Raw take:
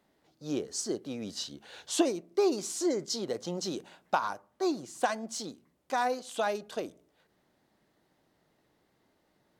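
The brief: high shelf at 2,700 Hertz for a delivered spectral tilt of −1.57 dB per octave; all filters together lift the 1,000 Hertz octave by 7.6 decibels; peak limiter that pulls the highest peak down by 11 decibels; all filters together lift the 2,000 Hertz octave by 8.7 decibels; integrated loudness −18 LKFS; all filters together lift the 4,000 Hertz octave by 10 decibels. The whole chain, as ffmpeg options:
ffmpeg -i in.wav -af "equalizer=frequency=1000:width_type=o:gain=8,equalizer=frequency=2000:width_type=o:gain=4.5,highshelf=frequency=2700:gain=8,equalizer=frequency=4000:width_type=o:gain=4,volume=11.5dB,alimiter=limit=-5dB:level=0:latency=1" out.wav

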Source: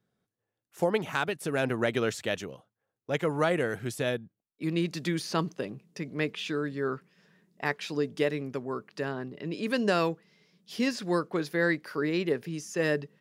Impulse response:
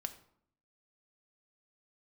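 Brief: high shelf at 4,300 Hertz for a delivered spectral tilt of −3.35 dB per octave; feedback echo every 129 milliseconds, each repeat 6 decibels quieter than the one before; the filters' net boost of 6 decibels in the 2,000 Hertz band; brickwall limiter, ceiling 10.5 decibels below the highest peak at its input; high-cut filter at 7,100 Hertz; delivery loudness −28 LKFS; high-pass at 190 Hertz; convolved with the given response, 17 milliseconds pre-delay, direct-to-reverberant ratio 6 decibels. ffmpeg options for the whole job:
-filter_complex "[0:a]highpass=190,lowpass=7100,equalizer=frequency=2000:width_type=o:gain=8,highshelf=frequency=4300:gain=-3,alimiter=limit=-19.5dB:level=0:latency=1,aecho=1:1:129|258|387|516|645|774:0.501|0.251|0.125|0.0626|0.0313|0.0157,asplit=2[link_01][link_02];[1:a]atrim=start_sample=2205,adelay=17[link_03];[link_02][link_03]afir=irnorm=-1:irlink=0,volume=-4.5dB[link_04];[link_01][link_04]amix=inputs=2:normalize=0,volume=2.5dB"

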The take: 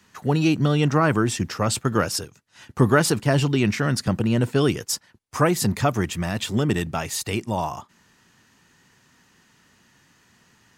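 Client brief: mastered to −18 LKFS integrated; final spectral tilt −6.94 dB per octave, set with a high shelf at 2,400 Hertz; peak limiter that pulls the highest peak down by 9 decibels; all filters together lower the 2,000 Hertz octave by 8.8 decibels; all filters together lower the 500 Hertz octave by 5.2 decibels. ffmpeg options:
ffmpeg -i in.wav -af "equalizer=frequency=500:width_type=o:gain=-6,equalizer=frequency=2000:width_type=o:gain=-8.5,highshelf=frequency=2400:gain=-8,volume=9.5dB,alimiter=limit=-7dB:level=0:latency=1" out.wav

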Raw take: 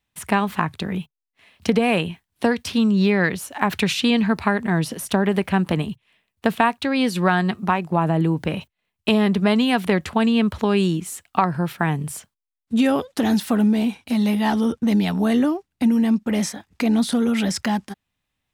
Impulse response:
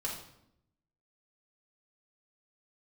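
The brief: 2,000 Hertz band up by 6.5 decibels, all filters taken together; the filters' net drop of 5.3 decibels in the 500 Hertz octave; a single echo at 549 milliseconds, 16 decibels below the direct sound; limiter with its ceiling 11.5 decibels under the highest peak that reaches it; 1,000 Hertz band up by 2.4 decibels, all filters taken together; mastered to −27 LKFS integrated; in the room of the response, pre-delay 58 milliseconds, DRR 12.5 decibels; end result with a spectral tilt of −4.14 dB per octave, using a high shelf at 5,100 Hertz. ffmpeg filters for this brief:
-filter_complex "[0:a]equalizer=frequency=500:width_type=o:gain=-8.5,equalizer=frequency=1000:width_type=o:gain=4,equalizer=frequency=2000:width_type=o:gain=8,highshelf=frequency=5100:gain=-4,alimiter=limit=-11.5dB:level=0:latency=1,aecho=1:1:549:0.158,asplit=2[link_01][link_02];[1:a]atrim=start_sample=2205,adelay=58[link_03];[link_02][link_03]afir=irnorm=-1:irlink=0,volume=-15dB[link_04];[link_01][link_04]amix=inputs=2:normalize=0,volume=-4.5dB"

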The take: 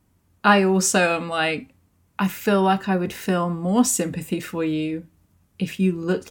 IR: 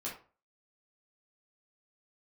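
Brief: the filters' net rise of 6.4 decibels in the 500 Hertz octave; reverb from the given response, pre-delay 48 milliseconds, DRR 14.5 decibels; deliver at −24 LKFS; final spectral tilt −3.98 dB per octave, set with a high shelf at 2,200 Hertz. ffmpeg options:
-filter_complex "[0:a]equalizer=frequency=500:width_type=o:gain=8,highshelf=frequency=2200:gain=5.5,asplit=2[link_01][link_02];[1:a]atrim=start_sample=2205,adelay=48[link_03];[link_02][link_03]afir=irnorm=-1:irlink=0,volume=-15.5dB[link_04];[link_01][link_04]amix=inputs=2:normalize=0,volume=-6.5dB"

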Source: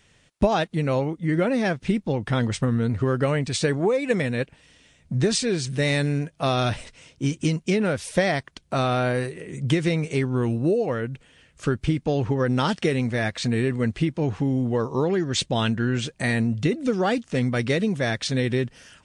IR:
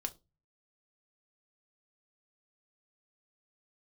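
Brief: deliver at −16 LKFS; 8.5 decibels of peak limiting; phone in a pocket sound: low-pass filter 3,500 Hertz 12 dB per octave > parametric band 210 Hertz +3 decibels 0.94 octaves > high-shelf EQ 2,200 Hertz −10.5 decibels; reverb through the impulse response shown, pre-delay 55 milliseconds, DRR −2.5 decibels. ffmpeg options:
-filter_complex "[0:a]alimiter=limit=-16dB:level=0:latency=1,asplit=2[link_01][link_02];[1:a]atrim=start_sample=2205,adelay=55[link_03];[link_02][link_03]afir=irnorm=-1:irlink=0,volume=3dB[link_04];[link_01][link_04]amix=inputs=2:normalize=0,lowpass=3500,equalizer=frequency=210:width_type=o:width=0.94:gain=3,highshelf=frequency=2200:gain=-10.5,volume=4.5dB"

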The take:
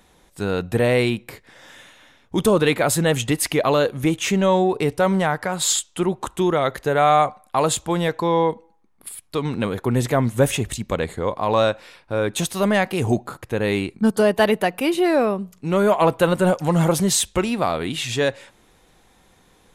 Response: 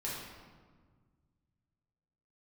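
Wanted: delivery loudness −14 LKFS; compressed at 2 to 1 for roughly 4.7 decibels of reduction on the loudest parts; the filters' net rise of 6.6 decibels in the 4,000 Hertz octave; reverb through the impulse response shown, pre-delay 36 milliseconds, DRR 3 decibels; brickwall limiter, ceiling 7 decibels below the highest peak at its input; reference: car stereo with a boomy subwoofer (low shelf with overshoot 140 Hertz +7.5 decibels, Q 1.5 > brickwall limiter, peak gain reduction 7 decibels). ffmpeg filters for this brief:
-filter_complex "[0:a]equalizer=frequency=4000:width_type=o:gain=8,acompressor=threshold=-20dB:ratio=2,alimiter=limit=-15dB:level=0:latency=1,asplit=2[link_01][link_02];[1:a]atrim=start_sample=2205,adelay=36[link_03];[link_02][link_03]afir=irnorm=-1:irlink=0,volume=-5.5dB[link_04];[link_01][link_04]amix=inputs=2:normalize=0,lowshelf=frequency=140:width_type=q:width=1.5:gain=7.5,volume=10.5dB,alimiter=limit=-4dB:level=0:latency=1"

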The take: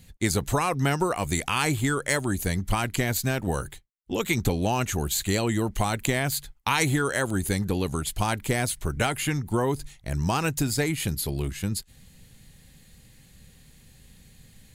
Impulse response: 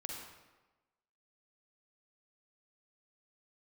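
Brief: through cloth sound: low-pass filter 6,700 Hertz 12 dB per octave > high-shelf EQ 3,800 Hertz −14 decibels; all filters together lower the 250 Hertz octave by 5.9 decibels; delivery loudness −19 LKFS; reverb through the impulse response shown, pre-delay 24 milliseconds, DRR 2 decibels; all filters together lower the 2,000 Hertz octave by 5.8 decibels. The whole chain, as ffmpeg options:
-filter_complex "[0:a]equalizer=frequency=250:width_type=o:gain=-8.5,equalizer=frequency=2000:width_type=o:gain=-3.5,asplit=2[link_01][link_02];[1:a]atrim=start_sample=2205,adelay=24[link_03];[link_02][link_03]afir=irnorm=-1:irlink=0,volume=-1dB[link_04];[link_01][link_04]amix=inputs=2:normalize=0,lowpass=6700,highshelf=frequency=3800:gain=-14,volume=9.5dB"

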